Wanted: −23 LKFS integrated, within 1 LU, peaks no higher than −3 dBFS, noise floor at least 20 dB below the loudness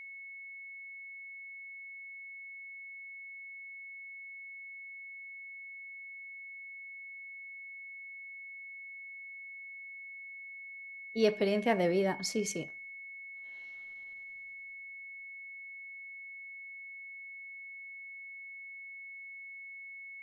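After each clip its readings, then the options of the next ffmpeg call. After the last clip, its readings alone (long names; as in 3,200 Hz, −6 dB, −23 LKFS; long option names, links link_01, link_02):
interfering tone 2,200 Hz; level of the tone −44 dBFS; integrated loudness −40.0 LKFS; sample peak −14.5 dBFS; target loudness −23.0 LKFS
→ -af "bandreject=frequency=2200:width=30"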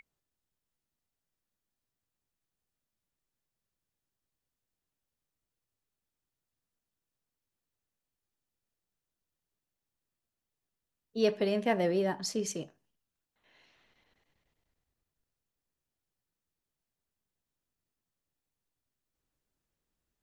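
interfering tone none found; integrated loudness −31.5 LKFS; sample peak −14.5 dBFS; target loudness −23.0 LKFS
→ -af "volume=8.5dB"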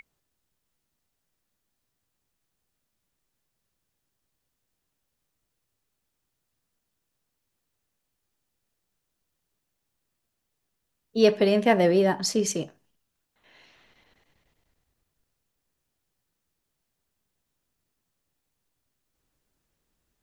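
integrated loudness −23.0 LKFS; sample peak −6.0 dBFS; background noise floor −81 dBFS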